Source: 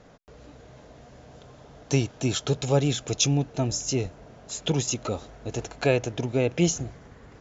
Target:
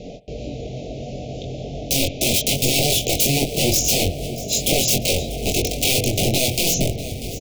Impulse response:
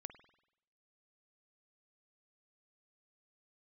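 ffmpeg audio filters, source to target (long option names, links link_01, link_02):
-filter_complex "[0:a]lowpass=5400,acompressor=threshold=-29dB:ratio=1.5,aeval=exprs='(mod(26.6*val(0)+1,2)-1)/26.6':channel_layout=same,asuperstop=centerf=1300:order=12:qfactor=0.81,asplit=2[link_01][link_02];[link_02]adelay=22,volume=-4dB[link_03];[link_01][link_03]amix=inputs=2:normalize=0,aecho=1:1:641|1282|1923|2564:0.141|0.0678|0.0325|0.0156,asplit=2[link_04][link_05];[1:a]atrim=start_sample=2205[link_06];[link_05][link_06]afir=irnorm=-1:irlink=0,volume=3.5dB[link_07];[link_04][link_07]amix=inputs=2:normalize=0,alimiter=level_in=17.5dB:limit=-1dB:release=50:level=0:latency=1,volume=-5.5dB"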